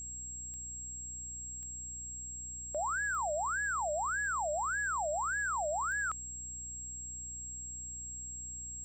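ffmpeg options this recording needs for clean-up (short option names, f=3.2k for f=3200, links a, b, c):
-af "adeclick=t=4,bandreject=f=61.5:t=h:w=4,bandreject=f=123:t=h:w=4,bandreject=f=184.5:t=h:w=4,bandreject=f=246:t=h:w=4,bandreject=f=307.5:t=h:w=4,bandreject=f=7.6k:w=30,agate=range=-21dB:threshold=-35dB"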